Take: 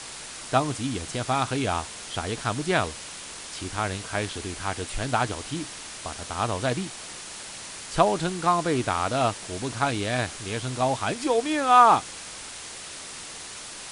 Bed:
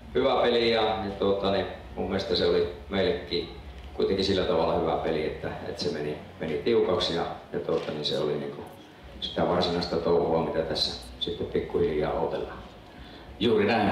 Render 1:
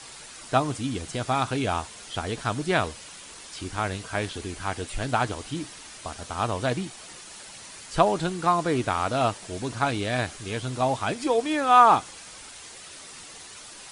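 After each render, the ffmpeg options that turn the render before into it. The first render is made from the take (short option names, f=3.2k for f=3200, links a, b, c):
-af "afftdn=nr=7:nf=-40"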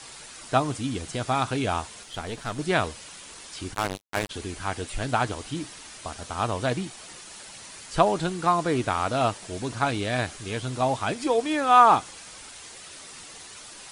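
-filter_complex "[0:a]asettb=1/sr,asplit=3[a][b][c];[a]atrim=end=2.034[d];[b]atrim=start=2.03:end=2.59,asetpts=PTS-STARTPTS,afade=t=in:d=0.004:c=qsin,afade=t=out:st=0.556:d=0.004:c=qsin,aeval=exprs='(tanh(12.6*val(0)+0.65)-tanh(0.65))/12.6':c=same[e];[c]atrim=start=2.586[f];[d][e]acrossfade=d=0.004:c1=hsin:c2=qsin[g];[g][f]acrossfade=d=0.004:c1=qsin:c2=hsin,asplit=3[h][i][j];[h]afade=t=out:st=3.73:d=0.02[k];[i]acrusher=bits=3:mix=0:aa=0.5,afade=t=in:st=3.73:d=0.02,afade=t=out:st=4.29:d=0.02[l];[j]afade=t=in:st=4.29:d=0.02[m];[k][l][m]amix=inputs=3:normalize=0"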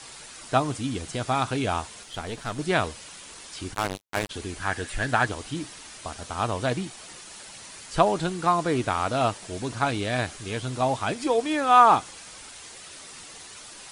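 -filter_complex "[0:a]asettb=1/sr,asplit=3[a][b][c];[a]atrim=end=4.624[d];[b]atrim=start=4.62:end=5.26,asetpts=PTS-STARTPTS,afade=t=in:d=0.004:c=qsin,afade=t=out:st=0.636:d=0.004:c=qsin,equalizer=f=1.7k:w=5:g=12.5[e];[c]atrim=start=5.256[f];[d][e]acrossfade=d=0.004:c1=hsin:c2=qsin[g];[g][f]acrossfade=d=0.004:c1=qsin:c2=hsin"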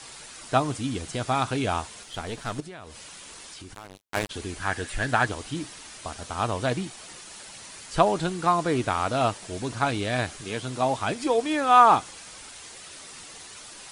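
-filter_complex "[0:a]asettb=1/sr,asplit=3[a][b][c];[a]atrim=end=2.604[d];[b]atrim=start=2.6:end=4.01,asetpts=PTS-STARTPTS,afade=t=in:d=0.004:c=qsin,afade=t=out:st=1.406:d=0.004:c=qsin,acompressor=threshold=-39dB:ratio=6:attack=3.2:release=140:knee=1:detection=peak[e];[c]atrim=start=4.006[f];[d][e]acrossfade=d=0.004:c1=hsin:c2=qsin[g];[g][f]acrossfade=d=0.004:c1=qsin:c2=hsin,asettb=1/sr,asplit=3[h][i][j];[h]atrim=end=10.414[k];[i]atrim=start=10.41:end=10.97,asetpts=PTS-STARTPTS,afade=t=in:d=0.004:c=qsin,afade=t=out:st=0.556:d=0.004:c=qsin,highpass=130[l];[j]atrim=start=10.966[m];[k][l]acrossfade=d=0.004:c1=hsin:c2=qsin[n];[n][m]acrossfade=d=0.004:c1=qsin:c2=hsin"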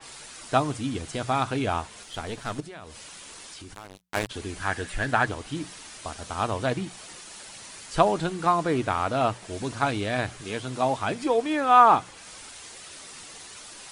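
-af "bandreject=f=60:t=h:w=6,bandreject=f=120:t=h:w=6,bandreject=f=180:t=h:w=6,adynamicequalizer=threshold=0.00794:dfrequency=3300:dqfactor=0.7:tfrequency=3300:tqfactor=0.7:attack=5:release=100:ratio=0.375:range=3.5:mode=cutabove:tftype=highshelf"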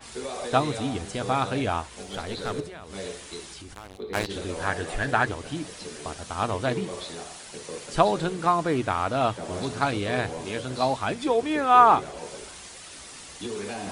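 -filter_complex "[1:a]volume=-11dB[a];[0:a][a]amix=inputs=2:normalize=0"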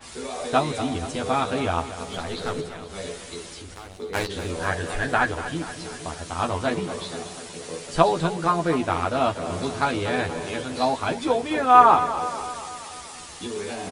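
-filter_complex "[0:a]asplit=2[a][b];[b]adelay=12,volume=-3.5dB[c];[a][c]amix=inputs=2:normalize=0,asplit=2[d][e];[e]aecho=0:1:239|478|717|956|1195|1434|1673:0.237|0.14|0.0825|0.0487|0.0287|0.017|0.01[f];[d][f]amix=inputs=2:normalize=0"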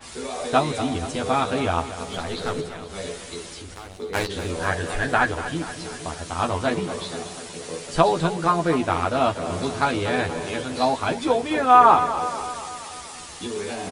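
-af "volume=1.5dB,alimiter=limit=-3dB:level=0:latency=1"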